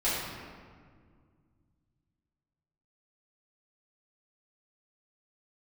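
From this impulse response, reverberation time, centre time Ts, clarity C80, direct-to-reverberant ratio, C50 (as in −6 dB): 1.9 s, 106 ms, 1.0 dB, −12.0 dB, −1.5 dB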